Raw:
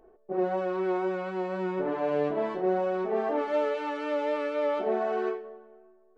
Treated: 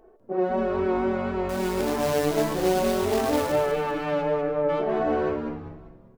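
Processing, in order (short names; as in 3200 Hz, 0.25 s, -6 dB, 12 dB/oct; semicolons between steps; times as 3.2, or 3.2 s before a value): 1.49–3.52 companded quantiser 4-bit; 4.21–4.68 LPF 1500 Hz -> 1100 Hz 12 dB/oct; frequency-shifting echo 0.197 s, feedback 39%, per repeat -140 Hz, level -6 dB; gain +3 dB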